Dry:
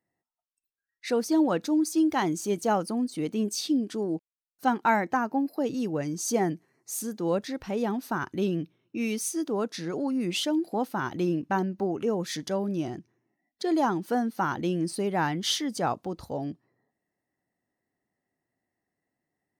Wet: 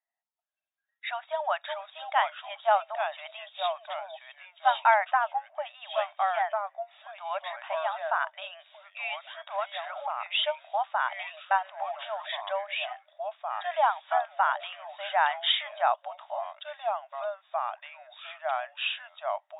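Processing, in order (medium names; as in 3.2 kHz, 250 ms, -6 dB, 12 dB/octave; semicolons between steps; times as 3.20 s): level rider gain up to 11 dB; ever faster or slower copies 425 ms, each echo -3 st, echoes 2, each echo -6 dB; brick-wall FIR band-pass 580–3800 Hz; trim -6.5 dB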